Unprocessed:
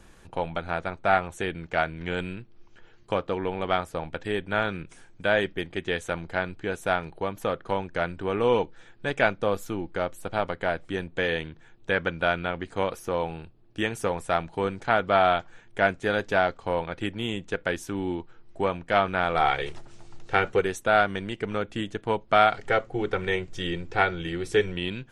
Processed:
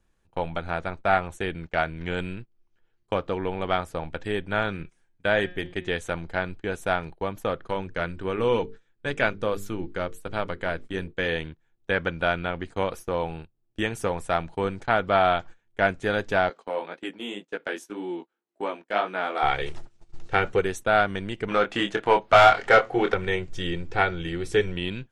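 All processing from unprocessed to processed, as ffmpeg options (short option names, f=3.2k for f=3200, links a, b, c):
-filter_complex "[0:a]asettb=1/sr,asplit=3[a][b][c];[a]atrim=end=4.754[d];[b]atrim=start=4.75:end=5.88,asetpts=PTS-STARTPTS,afade=t=in:d=0.004:c=qsin,afade=t=out:st=1.126:d=0.004:c=qsin,equalizer=f=1.9k:t=o:w=0.24:g=2.5,bandreject=f=179.9:t=h:w=4,bandreject=f=359.8:t=h:w=4,bandreject=f=539.7:t=h:w=4,bandreject=f=719.6:t=h:w=4,bandreject=f=899.5:t=h:w=4,bandreject=f=1.0794k:t=h:w=4,bandreject=f=1.2593k:t=h:w=4,bandreject=f=1.4392k:t=h:w=4,bandreject=f=1.6191k:t=h:w=4,bandreject=f=1.799k:t=h:w=4,bandreject=f=1.9789k:t=h:w=4,bandreject=f=2.1588k:t=h:w=4,bandreject=f=2.3387k:t=h:w=4,bandreject=f=2.5186k:t=h:w=4,bandreject=f=2.6985k:t=h:w=4,bandreject=f=2.8784k:t=h:w=4,bandreject=f=3.0583k:t=h:w=4,bandreject=f=3.2382k:t=h:w=4,bandreject=f=3.4181k:t=h:w=4,bandreject=f=3.598k:t=h:w=4,bandreject=f=3.7779k:t=h:w=4,bandreject=f=3.9578k:t=h:w=4,bandreject=f=4.1377k:t=h:w=4,bandreject=f=4.3176k:t=h:w=4,bandreject=f=4.4975k:t=h:w=4[e];[c]atrim=start=5.876[f];[d][e]acrossfade=d=0.004:c1=hsin:c2=qsin[g];[g][f]acrossfade=d=0.004:c1=qsin:c2=hsin,asettb=1/sr,asplit=3[h][i][j];[h]atrim=end=7.674[k];[i]atrim=start=7.67:end=11.26,asetpts=PTS-STARTPTS,afade=t=in:d=0.004:c=qsin,afade=t=out:st=3.586:d=0.004:c=qsin,equalizer=f=750:w=3.1:g=-6,bandreject=f=50:t=h:w=6,bandreject=f=100:t=h:w=6,bandreject=f=150:t=h:w=6,bandreject=f=200:t=h:w=6,bandreject=f=250:t=h:w=6,bandreject=f=300:t=h:w=6,bandreject=f=350:t=h:w=6,bandreject=f=400:t=h:w=6,bandreject=f=450:t=h:w=6[l];[j]atrim=start=11.256[m];[k][l]acrossfade=d=0.004:c1=hsin:c2=qsin[n];[n][m]acrossfade=d=0.004:c1=qsin:c2=hsin,asettb=1/sr,asplit=3[o][p][q];[o]atrim=end=16.494[r];[p]atrim=start=16.49:end=19.43,asetpts=PTS-STARTPTS,afade=t=in:d=0.004:c=qsin,afade=t=out:st=2.936:d=0.004:c=qsin,highpass=f=240:w=0.5412,highpass=f=240:w=1.3066,flanger=delay=16.5:depth=4.8:speed=1.9[s];[q]atrim=start=19.426[t];[r][s]acrossfade=d=0.004:c1=hsin:c2=qsin[u];[u][t]acrossfade=d=0.004:c1=qsin:c2=hsin,asettb=1/sr,asplit=3[v][w][x];[v]atrim=end=21.484[y];[w]atrim=start=21.48:end=23.14,asetpts=PTS-STARTPTS,afade=t=in:d=0.004:c=qsin,afade=t=out:st=1.656:d=0.004:c=qsin,lowshelf=f=130:g=-6.5,asplit=2[z][aa];[aa]highpass=f=720:p=1,volume=17dB,asoftclip=type=tanh:threshold=-5dB[ab];[z][ab]amix=inputs=2:normalize=0,lowpass=f=2.7k:p=1,volume=-6dB,asplit=2[ac][ad];[ad]adelay=25,volume=-6dB[ae];[ac][ae]amix=inputs=2:normalize=0,atrim=end_sample=73206[af];[x]atrim=start=23.136[ag];[y][af]acrossfade=d=0.004:c1=hsin:c2=qsin[ah];[ah][ag]acrossfade=d=0.004:c1=qsin:c2=hsin,agate=range=-20dB:threshold=-39dB:ratio=16:detection=peak,lowshelf=f=77:g=6"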